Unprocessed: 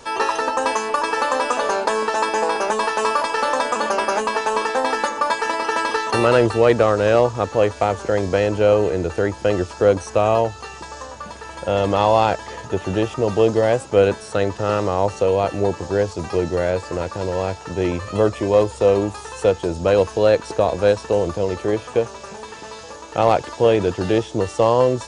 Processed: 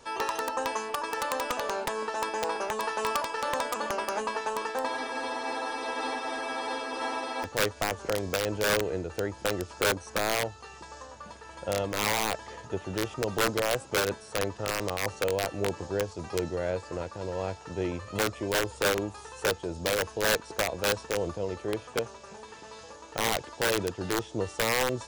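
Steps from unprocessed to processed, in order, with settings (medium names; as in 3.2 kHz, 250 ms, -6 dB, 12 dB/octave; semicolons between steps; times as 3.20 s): integer overflow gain 8.5 dB; spectral freeze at 4.91 s, 2.53 s; random flutter of the level, depth 50%; trim -8.5 dB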